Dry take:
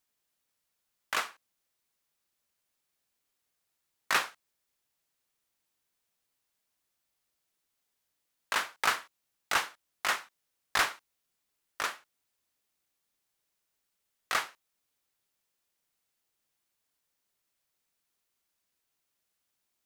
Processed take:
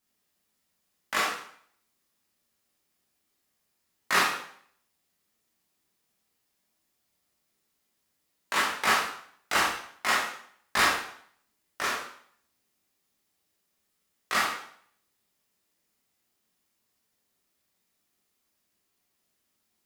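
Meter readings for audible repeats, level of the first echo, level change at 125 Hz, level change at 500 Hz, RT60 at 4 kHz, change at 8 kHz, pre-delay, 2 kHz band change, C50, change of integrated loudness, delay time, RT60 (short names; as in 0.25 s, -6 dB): none, none, +9.0 dB, +7.0 dB, 0.55 s, +4.5 dB, 6 ms, +5.0 dB, 3.0 dB, +4.5 dB, none, 0.60 s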